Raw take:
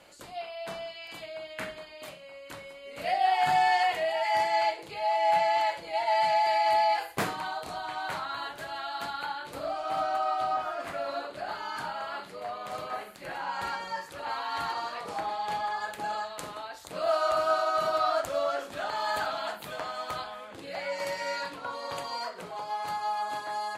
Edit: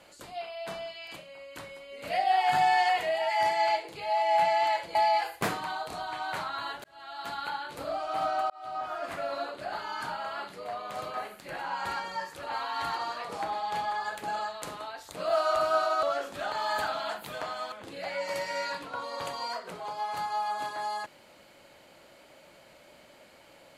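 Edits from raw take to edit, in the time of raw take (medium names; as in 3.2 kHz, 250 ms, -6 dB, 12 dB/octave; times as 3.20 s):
1.16–2.10 s: delete
5.89–6.71 s: delete
8.60–9.16 s: fade in
10.26–10.79 s: fade in
17.79–18.41 s: delete
20.10–20.43 s: delete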